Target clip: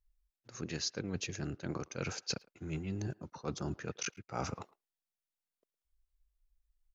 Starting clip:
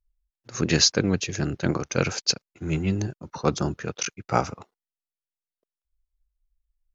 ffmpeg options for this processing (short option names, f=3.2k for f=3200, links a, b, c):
-filter_complex "[0:a]areverse,acompressor=threshold=-34dB:ratio=6,areverse,asplit=2[a][b];[b]adelay=110,highpass=300,lowpass=3.4k,asoftclip=type=hard:threshold=-33dB,volume=-22dB[c];[a][c]amix=inputs=2:normalize=0,volume=-1.5dB"